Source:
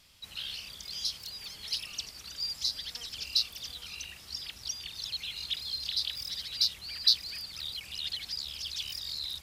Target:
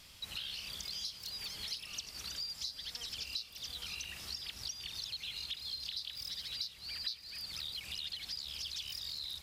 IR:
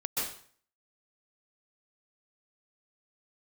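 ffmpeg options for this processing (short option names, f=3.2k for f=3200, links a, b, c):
-filter_complex "[0:a]acompressor=threshold=-44dB:ratio=6,asplit=2[a][b];[1:a]atrim=start_sample=2205,adelay=64[c];[b][c]afir=irnorm=-1:irlink=0,volume=-22dB[d];[a][d]amix=inputs=2:normalize=0,volume=4.5dB"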